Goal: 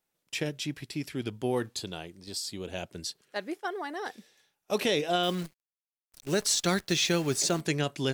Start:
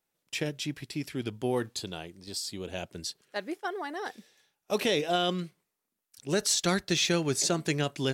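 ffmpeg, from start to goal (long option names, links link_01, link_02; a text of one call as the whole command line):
ffmpeg -i in.wav -filter_complex "[0:a]asettb=1/sr,asplit=3[link_01][link_02][link_03];[link_01]atrim=end=5.234[link_04];[link_02]atrim=start=5.23:end=7.61,asetpts=PTS-STARTPTS,afade=type=in:duration=0.004:curve=qsin,afade=type=out:start_time=2.376:duration=0.004:curve=qsin,acrusher=bits=8:dc=4:mix=0:aa=0.000001[link_05];[link_03]atrim=start=7.606[link_06];[link_04][link_05]acrossfade=duration=0.004:curve1=hsin:curve2=qsin[link_07];[link_07][link_06]acrossfade=duration=0.004:curve1=qsin:curve2=hsin" out.wav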